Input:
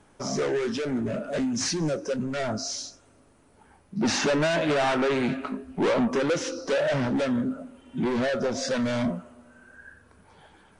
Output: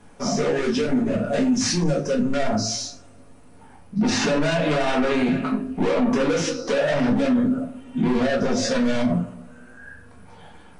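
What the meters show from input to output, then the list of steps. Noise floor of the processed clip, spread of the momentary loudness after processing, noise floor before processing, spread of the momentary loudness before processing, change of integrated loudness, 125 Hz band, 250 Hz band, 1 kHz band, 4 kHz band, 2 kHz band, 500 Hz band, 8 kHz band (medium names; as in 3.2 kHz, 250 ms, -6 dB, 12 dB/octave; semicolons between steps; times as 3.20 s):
-47 dBFS, 6 LU, -59 dBFS, 9 LU, +4.5 dB, +5.5 dB, +6.5 dB, +3.0 dB, +4.0 dB, +3.0 dB, +3.0 dB, +4.0 dB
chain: simulated room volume 160 m³, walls furnished, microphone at 1.8 m; peak limiter -15.5 dBFS, peak gain reduction 8.5 dB; trim +2.5 dB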